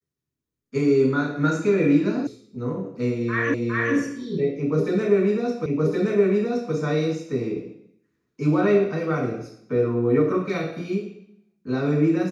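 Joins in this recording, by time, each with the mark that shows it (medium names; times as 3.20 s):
2.27 s: sound stops dead
3.54 s: repeat of the last 0.41 s
5.66 s: repeat of the last 1.07 s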